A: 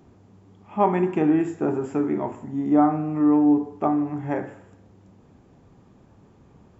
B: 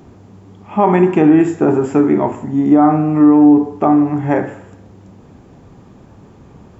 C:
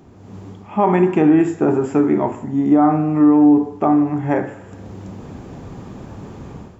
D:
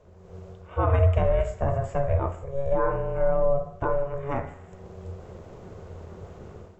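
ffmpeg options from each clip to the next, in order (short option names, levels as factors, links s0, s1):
-af "alimiter=level_in=4.22:limit=0.891:release=50:level=0:latency=1,volume=0.891"
-af "dynaudnorm=f=120:g=5:m=3.98,volume=0.596"
-af "aeval=exprs='val(0)*sin(2*PI*280*n/s)':c=same,equalizer=f=86:t=o:w=0.3:g=13.5,volume=0.447"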